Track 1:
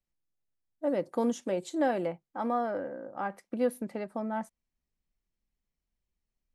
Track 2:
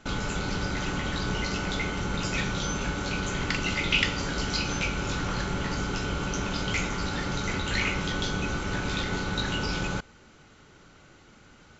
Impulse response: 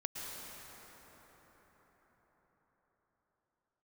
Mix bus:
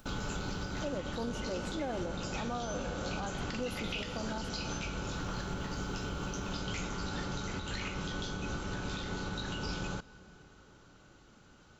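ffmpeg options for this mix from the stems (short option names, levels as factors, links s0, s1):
-filter_complex "[0:a]acompressor=mode=upward:threshold=0.0126:ratio=2.5,volume=0.562,asplit=2[s0][s1];[s1]volume=0.398[s2];[1:a]volume=0.501,asplit=2[s3][s4];[s4]volume=0.0944[s5];[2:a]atrim=start_sample=2205[s6];[s2][s5]amix=inputs=2:normalize=0[s7];[s7][s6]afir=irnorm=-1:irlink=0[s8];[s0][s3][s8]amix=inputs=3:normalize=0,equalizer=f=2100:t=o:w=0.48:g=-7,alimiter=level_in=1.41:limit=0.0631:level=0:latency=1:release=191,volume=0.708"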